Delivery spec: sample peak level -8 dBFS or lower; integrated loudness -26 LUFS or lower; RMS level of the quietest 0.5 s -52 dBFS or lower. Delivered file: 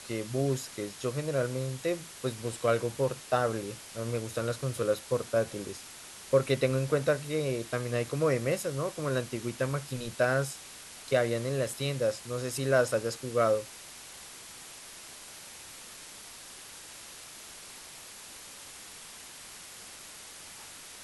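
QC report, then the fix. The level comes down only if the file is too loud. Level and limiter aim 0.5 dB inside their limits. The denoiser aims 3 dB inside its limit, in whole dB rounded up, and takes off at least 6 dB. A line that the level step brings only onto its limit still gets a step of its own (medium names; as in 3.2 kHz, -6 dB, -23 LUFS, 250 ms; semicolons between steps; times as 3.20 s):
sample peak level -13.0 dBFS: pass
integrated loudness -31.0 LUFS: pass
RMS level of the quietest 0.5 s -47 dBFS: fail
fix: noise reduction 8 dB, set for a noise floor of -47 dBFS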